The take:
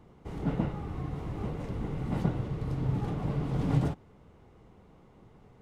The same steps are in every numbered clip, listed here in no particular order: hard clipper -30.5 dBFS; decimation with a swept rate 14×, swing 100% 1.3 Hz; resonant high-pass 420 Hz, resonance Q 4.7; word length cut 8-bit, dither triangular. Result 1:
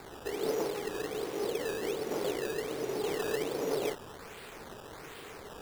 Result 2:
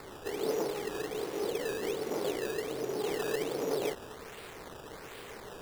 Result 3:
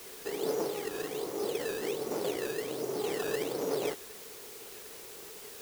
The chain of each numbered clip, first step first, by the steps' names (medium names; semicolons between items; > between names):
hard clipper > resonant high-pass > word length cut > decimation with a swept rate; word length cut > hard clipper > resonant high-pass > decimation with a swept rate; hard clipper > resonant high-pass > decimation with a swept rate > word length cut